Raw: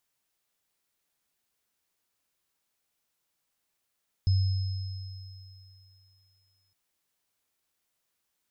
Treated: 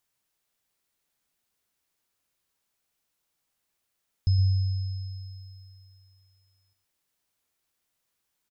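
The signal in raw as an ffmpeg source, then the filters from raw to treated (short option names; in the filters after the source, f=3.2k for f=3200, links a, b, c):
-f lavfi -i "aevalsrc='0.112*pow(10,-3*t/2.61)*sin(2*PI*95.5*t)+0.0141*pow(10,-3*t/4.04)*sin(2*PI*5150*t)':d=2.46:s=44100"
-filter_complex "[0:a]lowshelf=f=150:g=3,asplit=2[a][b];[b]aecho=0:1:116:0.299[c];[a][c]amix=inputs=2:normalize=0"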